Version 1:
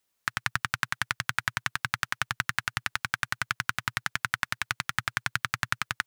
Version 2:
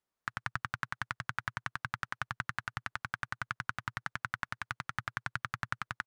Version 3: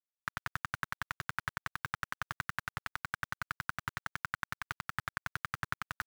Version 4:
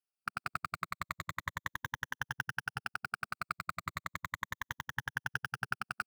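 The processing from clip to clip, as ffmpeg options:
-af "firequalizer=gain_entry='entry(1200,0);entry(2400,-8);entry(16000,-18)':delay=0.05:min_phase=1,volume=-5dB"
-af "areverse,acompressor=mode=upward:threshold=-36dB:ratio=2.5,areverse,acrusher=bits=6:mix=0:aa=0.000001,volume=-1dB"
-af "afftfilt=real='re*pow(10,14/40*sin(2*PI*(1.1*log(max(b,1)*sr/1024/100)/log(2)-(-0.35)*(pts-256)/sr)))':imag='im*pow(10,14/40*sin(2*PI*(1.1*log(max(b,1)*sr/1024/100)/log(2)-(-0.35)*(pts-256)/sr)))':win_size=1024:overlap=0.75,volume=-2.5dB"

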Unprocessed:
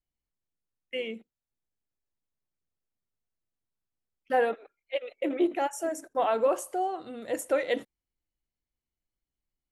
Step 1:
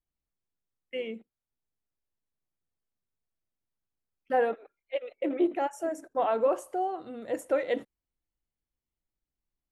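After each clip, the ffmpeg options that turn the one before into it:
-af "highshelf=f=2.5k:g=-9.5"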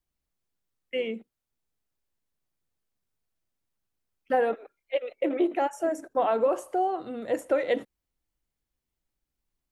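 -filter_complex "[0:a]acrossover=split=360|4800[a][b][c];[a]acompressor=threshold=-37dB:ratio=4[d];[b]acompressor=threshold=-27dB:ratio=4[e];[c]acompressor=threshold=-52dB:ratio=4[f];[d][e][f]amix=inputs=3:normalize=0,volume=5dB"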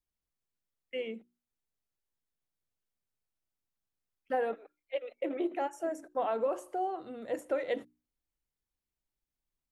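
-af "bandreject=f=60:t=h:w=6,bandreject=f=120:t=h:w=6,bandreject=f=180:t=h:w=6,bandreject=f=240:t=h:w=6,bandreject=f=300:t=h:w=6,bandreject=f=360:t=h:w=6,volume=-7dB"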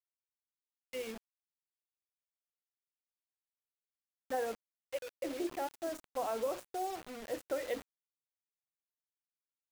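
-af "acrusher=bits=6:mix=0:aa=0.000001,volume=-4.5dB"

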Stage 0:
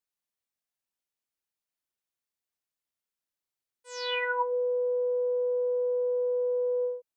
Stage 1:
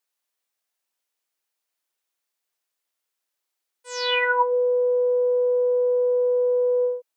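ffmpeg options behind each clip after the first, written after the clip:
-af "highpass=380,volume=8.5dB"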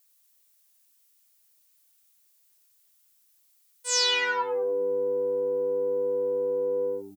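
-filter_complex "[0:a]acompressor=threshold=-26dB:ratio=10,crystalizer=i=4.5:c=0,asplit=2[a][b];[b]asplit=4[c][d][e][f];[c]adelay=98,afreqshift=-99,volume=-12dB[g];[d]adelay=196,afreqshift=-198,volume=-19.7dB[h];[e]adelay=294,afreqshift=-297,volume=-27.5dB[i];[f]adelay=392,afreqshift=-396,volume=-35.2dB[j];[g][h][i][j]amix=inputs=4:normalize=0[k];[a][k]amix=inputs=2:normalize=0"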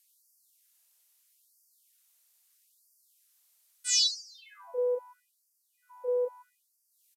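-af "aresample=32000,aresample=44100,afftfilt=real='re*gte(b*sr/1024,430*pow(4600/430,0.5+0.5*sin(2*PI*0.77*pts/sr)))':imag='im*gte(b*sr/1024,430*pow(4600/430,0.5+0.5*sin(2*PI*0.77*pts/sr)))':win_size=1024:overlap=0.75"

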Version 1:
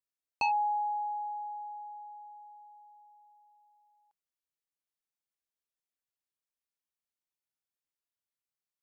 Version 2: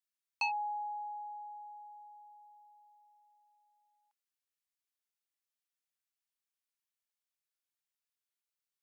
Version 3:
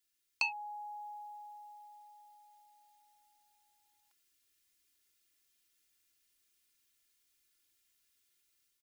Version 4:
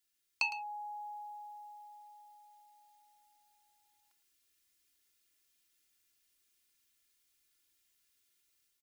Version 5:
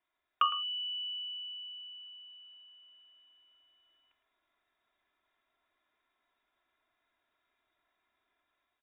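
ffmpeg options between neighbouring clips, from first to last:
-af "highpass=1.2k"
-af "equalizer=f=830:w=1.2:g=-13.5,aecho=1:1:2.9:0.75,dynaudnorm=f=540:g=3:m=5.5dB,volume=9dB"
-af "aecho=1:1:109:0.224"
-af "lowpass=f=3.2k:t=q:w=0.5098,lowpass=f=3.2k:t=q:w=0.6013,lowpass=f=3.2k:t=q:w=0.9,lowpass=f=3.2k:t=q:w=2.563,afreqshift=-3800,volume=6dB"

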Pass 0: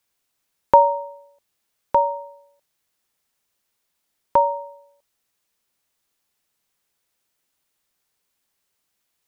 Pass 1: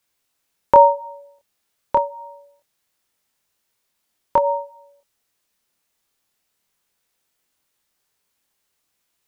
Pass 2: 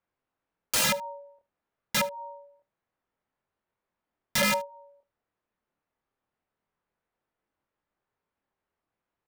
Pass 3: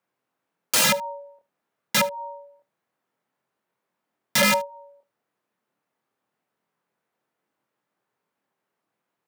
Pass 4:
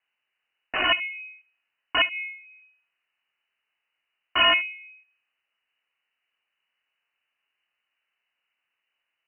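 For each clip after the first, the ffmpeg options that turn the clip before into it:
-af "flanger=delay=22.5:depth=5.1:speed=0.27,volume=5dB"
-af "lowpass=1.4k,aeval=exprs='(mod(6.31*val(0)+1,2)-1)/6.31':c=same,aecho=1:1:75:0.0841,volume=-3dB"
-af "highpass=f=130:w=0.5412,highpass=f=130:w=1.3066,volume=5.5dB"
-af "lowshelf=f=180:g=12,bandreject=f=63.43:t=h:w=4,bandreject=f=126.86:t=h:w=4,bandreject=f=190.29:t=h:w=4,bandreject=f=253.72:t=h:w=4,bandreject=f=317.15:t=h:w=4,bandreject=f=380.58:t=h:w=4,bandreject=f=444.01:t=h:w=4,bandreject=f=507.44:t=h:w=4,bandreject=f=570.87:t=h:w=4,bandreject=f=634.3:t=h:w=4,bandreject=f=697.73:t=h:w=4,bandreject=f=761.16:t=h:w=4,bandreject=f=824.59:t=h:w=4,bandreject=f=888.02:t=h:w=4,bandreject=f=951.45:t=h:w=4,bandreject=f=1.01488k:t=h:w=4,lowpass=f=2.6k:t=q:w=0.5098,lowpass=f=2.6k:t=q:w=0.6013,lowpass=f=2.6k:t=q:w=0.9,lowpass=f=2.6k:t=q:w=2.563,afreqshift=-3100"

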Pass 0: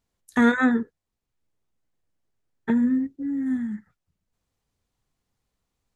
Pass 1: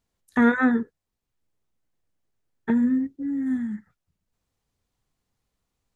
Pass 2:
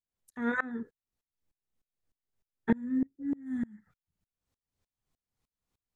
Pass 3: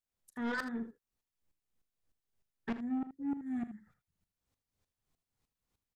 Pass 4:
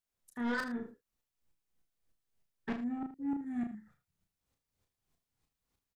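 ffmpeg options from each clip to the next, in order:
-filter_complex "[0:a]acrossover=split=2800[a][b];[b]acompressor=threshold=-53dB:ratio=4:attack=1:release=60[c];[a][c]amix=inputs=2:normalize=0"
-af "aeval=exprs='val(0)*pow(10,-28*if(lt(mod(-3.3*n/s,1),2*abs(-3.3)/1000),1-mod(-3.3*n/s,1)/(2*abs(-3.3)/1000),(mod(-3.3*n/s,1)-2*abs(-3.3)/1000)/(1-2*abs(-3.3)/1000))/20)':c=same"
-af "asoftclip=type=tanh:threshold=-31.5dB,aecho=1:1:39|79:0.168|0.251"
-filter_complex "[0:a]asplit=2[a][b];[b]adelay=33,volume=-5dB[c];[a][c]amix=inputs=2:normalize=0"

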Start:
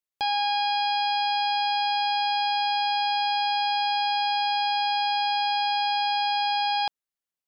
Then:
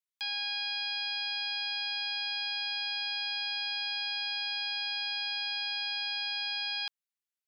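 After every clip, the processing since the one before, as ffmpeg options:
-af "highpass=f=1.4k:w=0.5412,highpass=f=1.4k:w=1.3066,volume=-4dB"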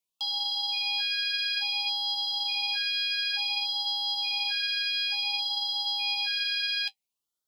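-filter_complex "[0:a]asplit=2[a][b];[b]asoftclip=type=tanh:threshold=-39.5dB,volume=-11.5dB[c];[a][c]amix=inputs=2:normalize=0,flanger=delay=6:depth=3.5:regen=-47:speed=0.5:shape=sinusoidal,afftfilt=real='re*(1-between(b*sr/1024,910*pow(2200/910,0.5+0.5*sin(2*PI*0.57*pts/sr))/1.41,910*pow(2200/910,0.5+0.5*sin(2*PI*0.57*pts/sr))*1.41))':imag='im*(1-between(b*sr/1024,910*pow(2200/910,0.5+0.5*sin(2*PI*0.57*pts/sr))/1.41,910*pow(2200/910,0.5+0.5*sin(2*PI*0.57*pts/sr))*1.41))':win_size=1024:overlap=0.75,volume=8.5dB"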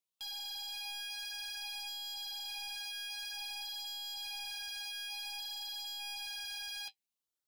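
-af "asoftclip=type=tanh:threshold=-34.5dB,volume=-5.5dB"

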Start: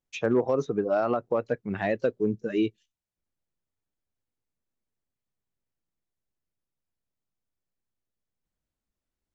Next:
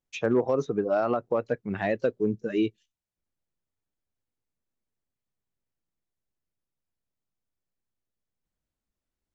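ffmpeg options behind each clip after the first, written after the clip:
-af anull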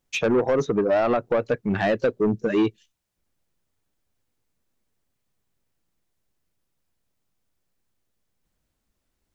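-filter_complex "[0:a]asplit=2[a][b];[b]acompressor=threshold=-31dB:ratio=6,volume=-1dB[c];[a][c]amix=inputs=2:normalize=0,asoftclip=type=tanh:threshold=-20.5dB,volume=5.5dB"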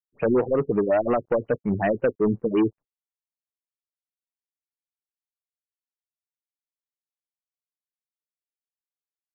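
-af "aeval=exprs='sgn(val(0))*max(abs(val(0))-0.00158,0)':c=same,afftfilt=real='re*lt(b*sr/1024,430*pow(3100/430,0.5+0.5*sin(2*PI*5.5*pts/sr)))':imag='im*lt(b*sr/1024,430*pow(3100/430,0.5+0.5*sin(2*PI*5.5*pts/sr)))':win_size=1024:overlap=0.75"

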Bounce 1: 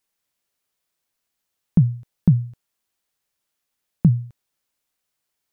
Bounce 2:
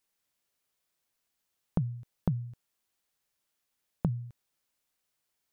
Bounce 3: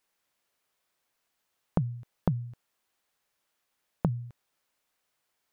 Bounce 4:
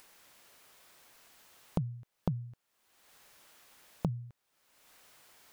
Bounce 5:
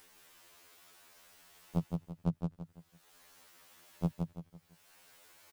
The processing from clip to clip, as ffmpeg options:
-af "acompressor=threshold=-24dB:ratio=8,volume=-2.5dB"
-af "equalizer=f=1k:w=0.32:g=7"
-af "acompressor=mode=upward:threshold=-36dB:ratio=2.5,volume=-5dB"
-filter_complex "[0:a]asplit=2[a][b];[b]aecho=0:1:168|336|504|672:0.631|0.215|0.0729|0.0248[c];[a][c]amix=inputs=2:normalize=0,afftfilt=real='re*2*eq(mod(b,4),0)':imag='im*2*eq(mod(b,4),0)':win_size=2048:overlap=0.75,volume=1dB"

